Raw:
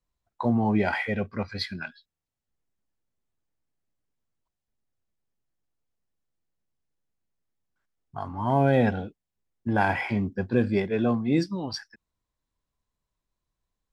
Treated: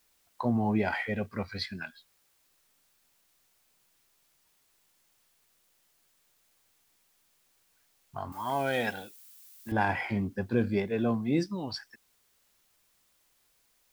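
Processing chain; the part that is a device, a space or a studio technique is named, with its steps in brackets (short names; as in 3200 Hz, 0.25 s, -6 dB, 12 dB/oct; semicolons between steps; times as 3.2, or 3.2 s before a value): noise-reduction cassette on a plain deck (mismatched tape noise reduction encoder only; wow and flutter; white noise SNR 36 dB); 8.32–9.72 tilt +4.5 dB/oct; gain -4 dB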